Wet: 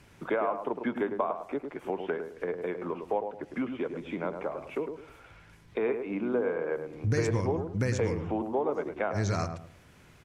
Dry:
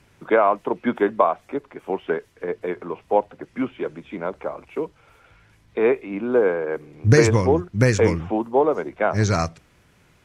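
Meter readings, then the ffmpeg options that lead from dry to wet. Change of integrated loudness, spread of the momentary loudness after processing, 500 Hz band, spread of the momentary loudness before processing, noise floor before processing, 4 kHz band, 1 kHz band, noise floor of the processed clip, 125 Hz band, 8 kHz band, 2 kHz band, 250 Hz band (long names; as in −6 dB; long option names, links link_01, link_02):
−10.0 dB, 7 LU, −10.0 dB, 13 LU, −58 dBFS, −11.0 dB, −10.5 dB, −56 dBFS, −10.0 dB, −12.0 dB, −10.5 dB, −8.5 dB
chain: -filter_complex "[0:a]acompressor=threshold=-32dB:ratio=2.5,asplit=2[link_01][link_02];[link_02]adelay=105,lowpass=frequency=1100:poles=1,volume=-6dB,asplit=2[link_03][link_04];[link_04]adelay=105,lowpass=frequency=1100:poles=1,volume=0.32,asplit=2[link_05][link_06];[link_06]adelay=105,lowpass=frequency=1100:poles=1,volume=0.32,asplit=2[link_07][link_08];[link_08]adelay=105,lowpass=frequency=1100:poles=1,volume=0.32[link_09];[link_01][link_03][link_05][link_07][link_09]amix=inputs=5:normalize=0"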